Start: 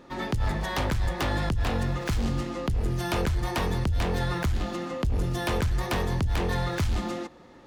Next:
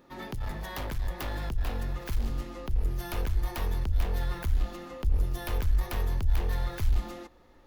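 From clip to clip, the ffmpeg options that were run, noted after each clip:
ffmpeg -i in.wav -af "aeval=exprs='clip(val(0),-1,0.0562)':channel_layout=same,aexciter=amount=4.2:drive=4.2:freq=11000,asubboost=boost=7.5:cutoff=55,volume=-8dB" out.wav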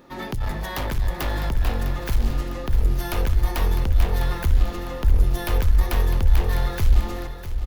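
ffmpeg -i in.wav -af "aecho=1:1:654|1308|1962|2616|3270:0.282|0.132|0.0623|0.0293|0.0138,volume=8dB" out.wav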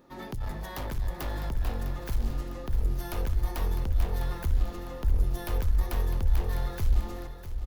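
ffmpeg -i in.wav -af "equalizer=frequency=2500:width_type=o:width=1.7:gain=-4,volume=-7.5dB" out.wav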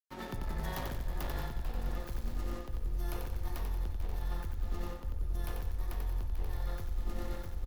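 ffmpeg -i in.wav -af "aecho=1:1:91|182|273|364|455|546|637:0.708|0.361|0.184|0.0939|0.0479|0.0244|0.0125,aeval=exprs='sgn(val(0))*max(abs(val(0))-0.00473,0)':channel_layout=same,areverse,acompressor=threshold=-33dB:ratio=6,areverse,volume=1.5dB" out.wav

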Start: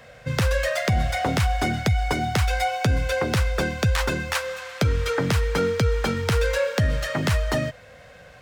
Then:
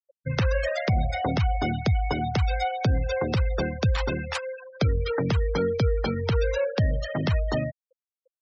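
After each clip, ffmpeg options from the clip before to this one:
ffmpeg -i in.wav -af "adynamicequalizer=threshold=0.00794:dfrequency=1600:dqfactor=1.2:tfrequency=1600:tqfactor=1.2:attack=5:release=100:ratio=0.375:range=2.5:mode=cutabove:tftype=bell,afftfilt=real='re*gte(hypot(re,im),0.0501)':imag='im*gte(hypot(re,im),0.0501)':win_size=1024:overlap=0.75,volume=-1.5dB" out.wav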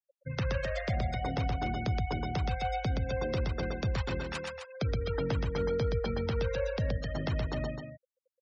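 ffmpeg -i in.wav -af "aecho=1:1:122.4|259.5:0.708|0.398,volume=-9dB" out.wav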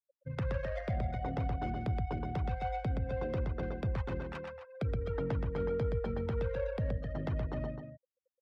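ffmpeg -i in.wav -af "adynamicsmooth=sensitivity=2:basefreq=1300,volume=-2.5dB" out.wav

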